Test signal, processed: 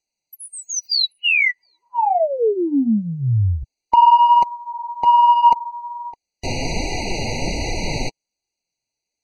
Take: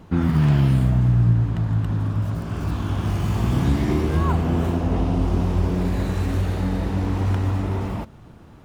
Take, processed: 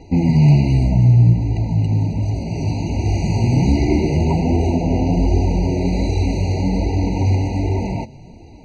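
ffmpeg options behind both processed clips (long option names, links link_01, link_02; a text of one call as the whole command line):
ffmpeg -i in.wav -filter_complex "[0:a]lowpass=frequency=5600:width_type=q:width=3,asplit=2[link_01][link_02];[link_02]acontrast=87,volume=-2.5dB[link_03];[link_01][link_03]amix=inputs=2:normalize=0,flanger=delay=2.5:depth=5.6:regen=-16:speed=1.3:shape=sinusoidal,acrossover=split=3900[link_04][link_05];[link_05]acompressor=threshold=-32dB:ratio=4:attack=1:release=60[link_06];[link_04][link_06]amix=inputs=2:normalize=0,afftfilt=real='re*eq(mod(floor(b*sr/1024/970),2),0)':imag='im*eq(mod(floor(b*sr/1024/970),2),0)':win_size=1024:overlap=0.75" out.wav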